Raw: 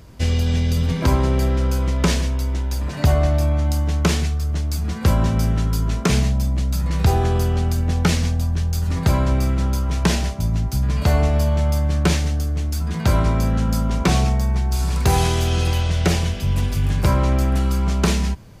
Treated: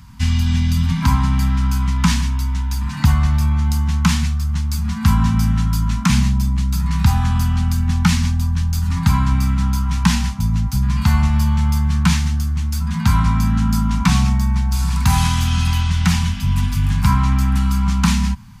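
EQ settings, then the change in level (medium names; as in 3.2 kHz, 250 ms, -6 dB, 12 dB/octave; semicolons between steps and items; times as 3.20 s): Chebyshev band-stop 230–920 Hz, order 3; peaking EQ 420 Hz +6 dB 2.5 oct; +2.0 dB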